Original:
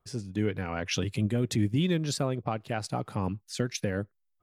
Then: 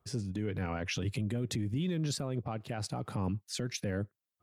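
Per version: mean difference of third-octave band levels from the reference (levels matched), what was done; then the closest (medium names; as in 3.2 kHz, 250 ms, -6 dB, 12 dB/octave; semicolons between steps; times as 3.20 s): 3.0 dB: high-pass 51 Hz 24 dB/octave; bass shelf 390 Hz +4 dB; peak limiter -25.5 dBFS, peak gain reduction 13 dB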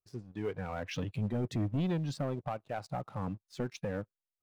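4.5 dB: low-pass 1.2 kHz 6 dB/octave; spectral noise reduction 9 dB; waveshaping leveller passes 2; trim -8.5 dB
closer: first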